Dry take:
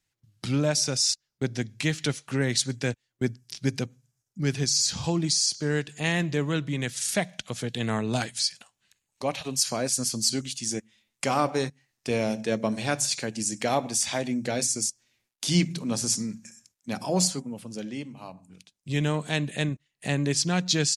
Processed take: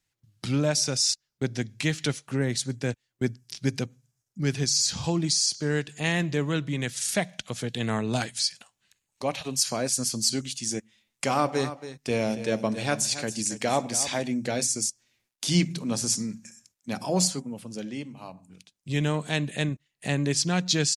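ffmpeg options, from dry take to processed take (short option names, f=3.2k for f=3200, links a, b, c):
-filter_complex "[0:a]asettb=1/sr,asplit=3[a][b][c];[a]atrim=end=2.214[d];[b]atrim=start=2.21:end=2.89,asetpts=PTS-STARTPTS,afade=t=in:d=0.004:c=qsin,afade=t=out:st=0.676:d=0.004:c=qsin,equalizer=f=3.6k:w=0.36:g=-5.5[e];[c]atrim=start=2.886[f];[d][e]acrossfade=d=0.004:c1=hsin:c2=qsin[g];[g][f]acrossfade=d=0.004:c1=qsin:c2=hsin,asplit=3[h][i][j];[h]afade=t=out:st=11.52:d=0.02[k];[i]aecho=1:1:277:0.237,afade=t=in:st=11.52:d=0.02,afade=t=out:st=14.21:d=0.02[l];[j]afade=t=in:st=14.21:d=0.02[m];[k][l][m]amix=inputs=3:normalize=0"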